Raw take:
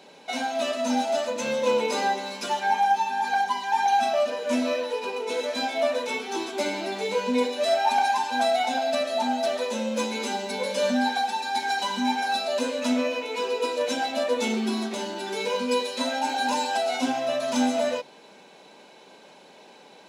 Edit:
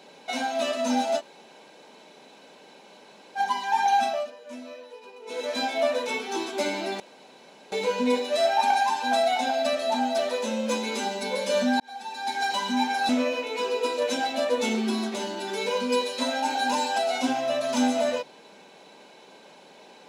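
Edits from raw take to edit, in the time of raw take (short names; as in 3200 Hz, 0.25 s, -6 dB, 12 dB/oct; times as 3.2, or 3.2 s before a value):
1.19–3.38 room tone, crossfade 0.06 s
4–5.53 dip -15.5 dB, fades 0.32 s
7 insert room tone 0.72 s
11.08–11.75 fade in
12.37–12.88 cut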